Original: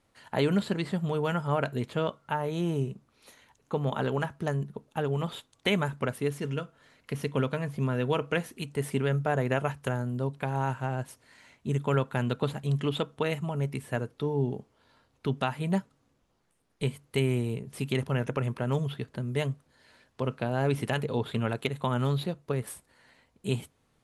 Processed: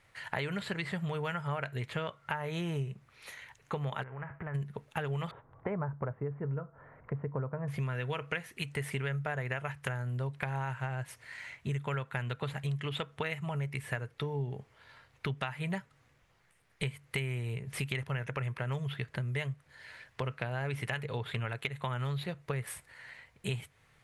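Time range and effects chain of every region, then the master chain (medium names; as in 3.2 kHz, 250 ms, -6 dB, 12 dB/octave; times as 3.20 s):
4.02–4.54 s: formants flattened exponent 0.6 + compression 16:1, threshold -37 dBFS + Bessel low-pass 1.2 kHz, order 8
5.31–7.68 s: low-pass 1.1 kHz 24 dB/octave + upward compressor, threshold -49 dBFS
whole clip: ten-band graphic EQ 125 Hz +6 dB, 250 Hz -10 dB, 2 kHz +11 dB; compression 6:1, threshold -35 dBFS; trim +2.5 dB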